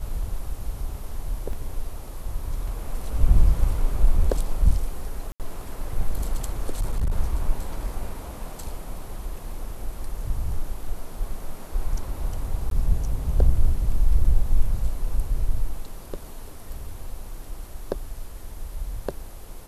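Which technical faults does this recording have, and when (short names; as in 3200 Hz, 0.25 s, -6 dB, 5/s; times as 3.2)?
1.53 gap 2.5 ms
5.32–5.4 gap 78 ms
6.73–7.13 clipped -19 dBFS
12.7–12.71 gap 12 ms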